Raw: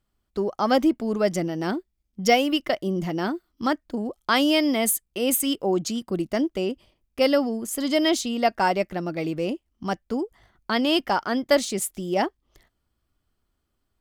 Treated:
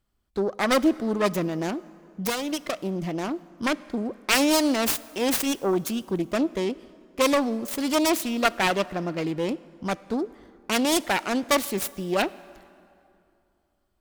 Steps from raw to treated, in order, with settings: self-modulated delay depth 0.56 ms; 1.66–3.31 compressor 4:1, threshold -25 dBFS, peak gain reduction 9.5 dB; plate-style reverb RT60 2.7 s, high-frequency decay 0.65×, DRR 18.5 dB

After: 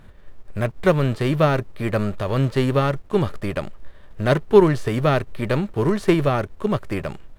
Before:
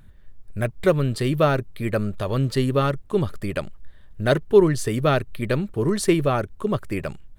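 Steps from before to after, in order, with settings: spectral whitening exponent 0.6; LPF 1200 Hz 6 dB/oct; gain +2.5 dB

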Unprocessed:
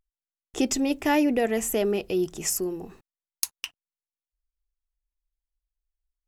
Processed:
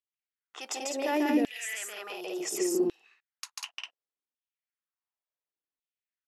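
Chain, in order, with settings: low-pass opened by the level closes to 2900 Hz, open at -20 dBFS; on a send: loudspeakers at several distances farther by 49 m -1 dB, 67 m -2 dB; on the sum: limiter -18 dBFS, peak gain reduction 9 dB; LFO high-pass saw down 0.69 Hz 230–3400 Hz; gain -4.5 dB

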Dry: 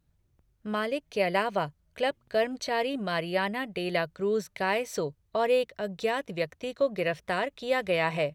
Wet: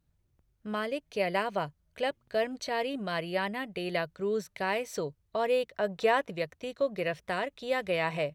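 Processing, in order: 5.74–6.3 bell 1000 Hz +8.5 dB 2.7 oct; gain -3 dB

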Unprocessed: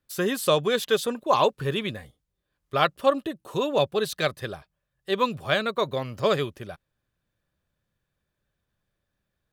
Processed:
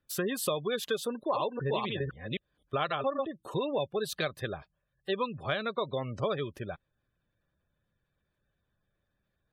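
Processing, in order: 1.08–3.31 reverse delay 0.258 s, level -2.5 dB; spectral gate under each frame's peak -25 dB strong; compressor 4:1, threshold -29 dBFS, peak gain reduction 12.5 dB

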